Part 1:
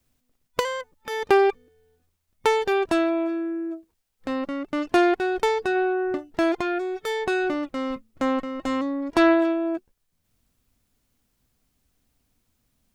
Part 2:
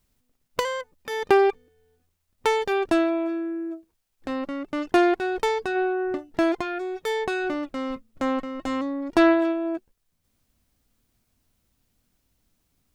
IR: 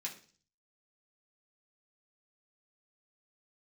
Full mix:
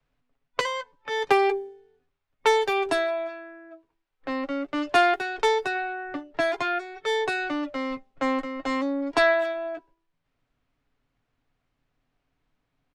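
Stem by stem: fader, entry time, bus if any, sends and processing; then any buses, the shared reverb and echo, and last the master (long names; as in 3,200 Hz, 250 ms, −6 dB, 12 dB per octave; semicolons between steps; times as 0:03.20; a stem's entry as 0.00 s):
+0.5 dB, 0.00 s, send −20 dB, Bessel high-pass filter 540 Hz, order 4
−6.0 dB, 8.5 ms, no send, comb filter 7.1 ms, depth 68%; hum removal 196.8 Hz, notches 5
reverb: on, RT60 0.40 s, pre-delay 3 ms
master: low-pass that shuts in the quiet parts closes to 2,300 Hz, open at −20 dBFS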